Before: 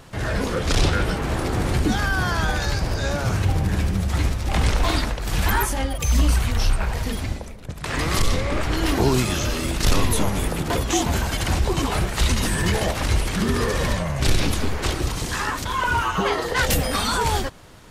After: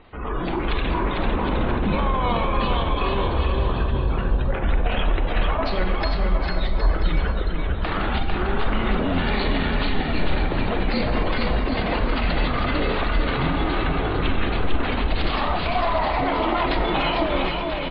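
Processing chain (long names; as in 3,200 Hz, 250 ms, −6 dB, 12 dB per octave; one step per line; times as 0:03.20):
Butterworth low-pass 6,200 Hz 36 dB per octave
gate on every frequency bin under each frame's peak −30 dB strong
parametric band 160 Hz −8.5 dB 1.2 octaves
automatic gain control gain up to 11.5 dB
brickwall limiter −13 dBFS, peak gain reduction 11 dB
pitch shifter −6.5 semitones
on a send: bouncing-ball delay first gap 450 ms, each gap 0.7×, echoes 5
on the sum: four-comb reverb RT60 0.85 s, combs from 30 ms, DRR 9 dB
level −2.5 dB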